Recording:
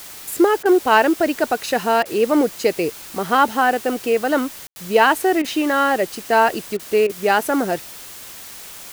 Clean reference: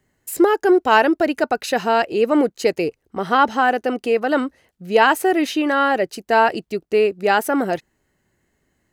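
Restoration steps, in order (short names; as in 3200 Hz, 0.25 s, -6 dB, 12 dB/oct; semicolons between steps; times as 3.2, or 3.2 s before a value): room tone fill 4.67–4.76; interpolate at 0.63/2.03/5.42/6.77/7.07, 23 ms; denoiser 30 dB, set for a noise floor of -37 dBFS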